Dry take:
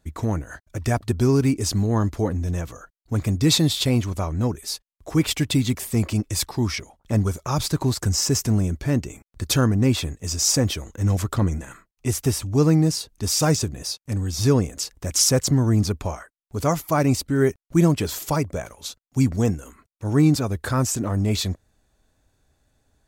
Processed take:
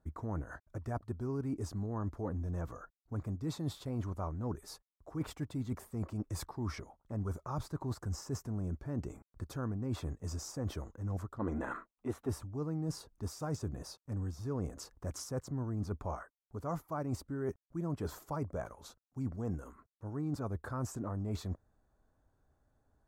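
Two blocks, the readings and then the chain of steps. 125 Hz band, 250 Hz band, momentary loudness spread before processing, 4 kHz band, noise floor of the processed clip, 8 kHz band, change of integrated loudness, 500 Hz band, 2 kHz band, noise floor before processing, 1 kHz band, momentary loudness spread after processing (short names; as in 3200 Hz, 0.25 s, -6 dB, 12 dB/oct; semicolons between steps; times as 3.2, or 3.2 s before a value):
-16.5 dB, -17.0 dB, 12 LU, -26.0 dB, under -85 dBFS, -25.0 dB, -17.5 dB, -16.0 dB, -18.5 dB, under -85 dBFS, -14.0 dB, 7 LU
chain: spectral gain 11.39–12.29, 200–4300 Hz +12 dB; resonant high shelf 1800 Hz -12 dB, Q 1.5; reverse; compressor 6:1, threshold -27 dBFS, peak gain reduction 18.5 dB; reverse; gain -7.5 dB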